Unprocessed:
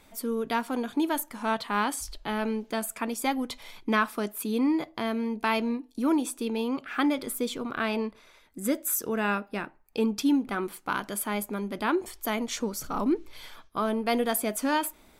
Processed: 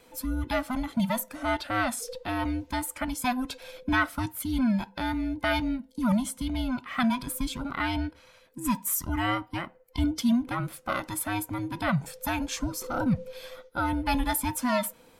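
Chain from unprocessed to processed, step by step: band inversion scrambler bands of 500 Hz

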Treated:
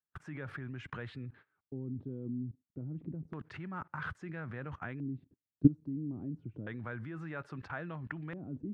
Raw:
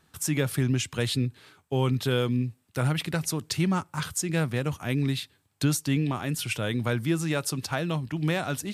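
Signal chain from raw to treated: level quantiser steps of 21 dB; gate -56 dBFS, range -23 dB; LFO low-pass square 0.3 Hz 290–1600 Hz

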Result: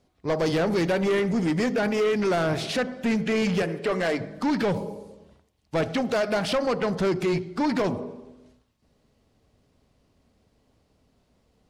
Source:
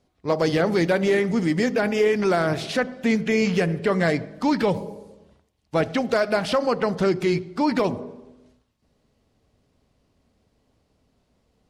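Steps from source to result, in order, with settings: 3.62–4.2 HPF 270 Hz 12 dB/oct; soft clip -20 dBFS, distortion -12 dB; gain +1 dB

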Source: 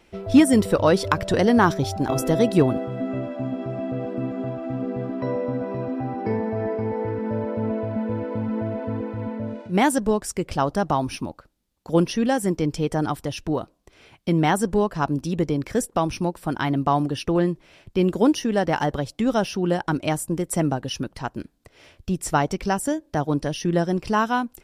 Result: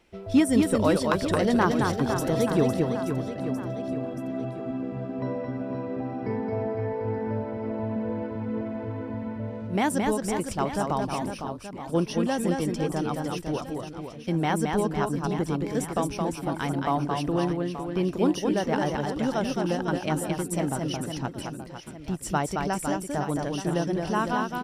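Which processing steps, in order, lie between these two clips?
reverse bouncing-ball echo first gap 0.22 s, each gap 1.3×, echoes 5; gain -6 dB

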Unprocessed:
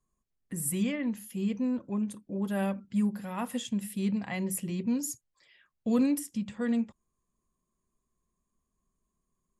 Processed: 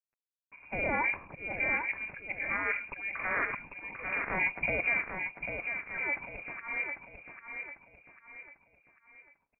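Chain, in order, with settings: spectral limiter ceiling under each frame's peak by 22 dB; HPF 190 Hz 6 dB/oct; limiter -26 dBFS, peak gain reduction 11 dB; auto swell 0.401 s; in parallel at -0.5 dB: compressor, threshold -36 dBFS, peak gain reduction 6 dB; on the sum: formant shift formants -3 st; requantised 10-bit, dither none; feedback echo 0.796 s, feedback 41%, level -6.5 dB; inverted band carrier 2600 Hz; gain +2 dB

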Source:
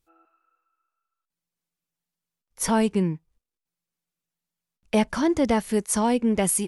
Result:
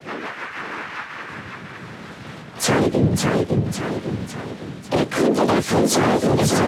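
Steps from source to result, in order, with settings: zero-crossing step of -34.5 dBFS; low-pass opened by the level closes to 1300 Hz, open at -20 dBFS; in parallel at 0 dB: compressor 6:1, threshold -30 dBFS, peak gain reduction 14 dB; on the sum: soft clip -11.5 dBFS, distortion -20 dB; noise vocoder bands 6; rotary speaker horn 6.3 Hz, later 0.6 Hz, at 0.61; on a send: feedback echo 0.551 s, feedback 47%, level -4.5 dB; on the sum: harmoniser -4 st -6 dB, +3 st -5 dB, +7 st -5 dB; maximiser +13 dB; gain -7.5 dB

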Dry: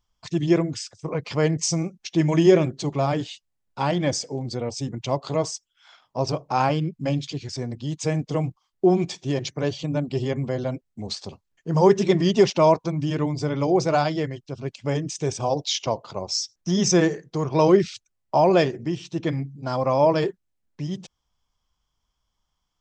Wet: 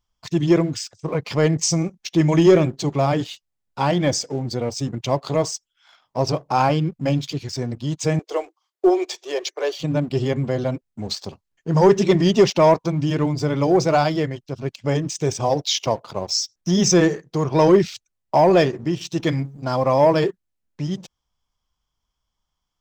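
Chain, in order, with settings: 8.19–9.8 steep high-pass 340 Hz 72 dB/oct; 19.01–19.65 high shelf 2800 Hz +8.5 dB; sample leveller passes 1

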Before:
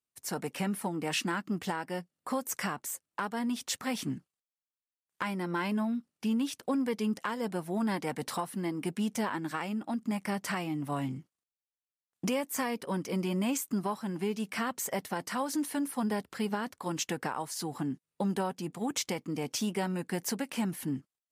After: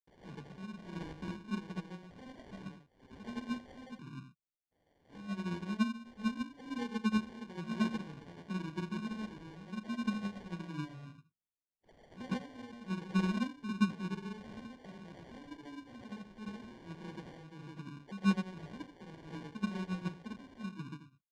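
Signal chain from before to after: spectral delay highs early, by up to 0.401 s; low shelf 280 Hz +12 dB; in parallel at -1 dB: limiter -26.5 dBFS, peak gain reduction 11 dB; on the sum: grains 0.233 s, grains 15/s; dynamic EQ 670 Hz, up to -6 dB, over -42 dBFS, Q 1.2; on a send: echo 83 ms -7.5 dB; on the sum: sample-and-hold 34×; LPF 4700 Hz 12 dB/oct; upward expander 2.5:1, over -30 dBFS; gain -2.5 dB

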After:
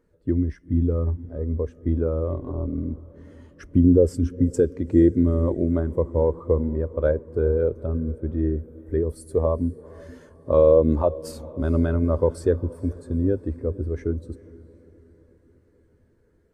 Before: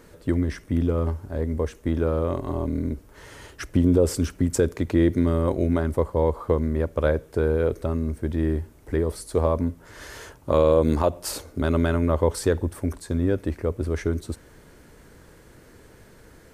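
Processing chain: 8.57–9.59 high shelf 7900 Hz +9 dB; diffused feedback echo 0.45 s, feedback 62%, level -13.5 dB; spectral expander 1.5:1; gain +2 dB

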